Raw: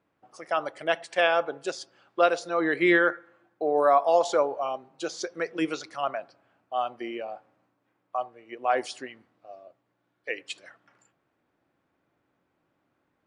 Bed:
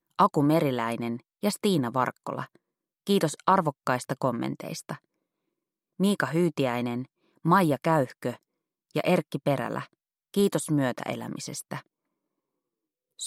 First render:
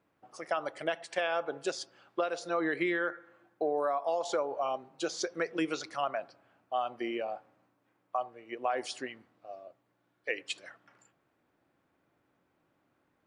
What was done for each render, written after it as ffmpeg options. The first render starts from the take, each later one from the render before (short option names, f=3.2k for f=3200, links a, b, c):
-af "alimiter=limit=-15dB:level=0:latency=1:release=356,acompressor=threshold=-27dB:ratio=6"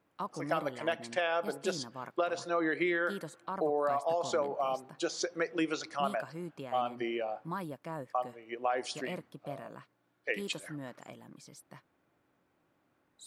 -filter_complex "[1:a]volume=-17.5dB[a];[0:a][a]amix=inputs=2:normalize=0"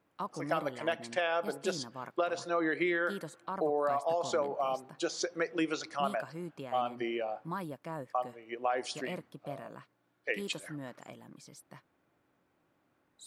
-af anull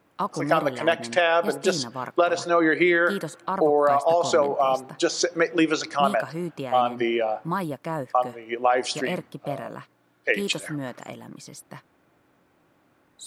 -af "volume=11dB"